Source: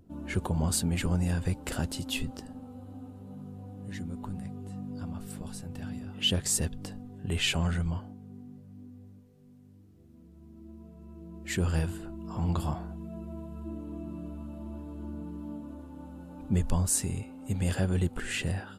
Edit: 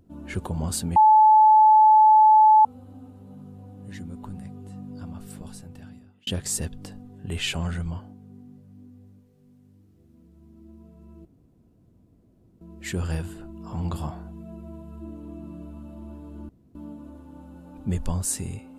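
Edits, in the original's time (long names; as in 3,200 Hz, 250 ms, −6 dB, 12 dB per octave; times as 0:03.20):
0:00.96–0:02.65: beep over 864 Hz −11 dBFS
0:05.46–0:06.27: fade out
0:11.25: splice in room tone 1.36 s
0:15.13–0:15.39: fill with room tone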